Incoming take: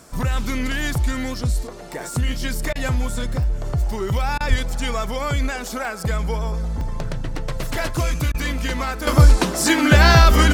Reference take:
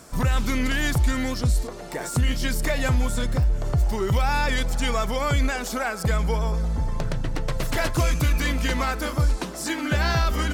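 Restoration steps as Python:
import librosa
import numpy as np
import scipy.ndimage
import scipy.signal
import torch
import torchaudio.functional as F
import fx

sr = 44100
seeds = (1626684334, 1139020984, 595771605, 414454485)

y = fx.fix_deplosive(x, sr, at_s=(4.49,))
y = fx.fix_interpolate(y, sr, at_s=(5.85, 6.81, 9.01), length_ms=1.6)
y = fx.fix_interpolate(y, sr, at_s=(2.73, 4.38, 8.32), length_ms=23.0)
y = fx.gain(y, sr, db=fx.steps((0.0, 0.0), (9.07, -10.5)))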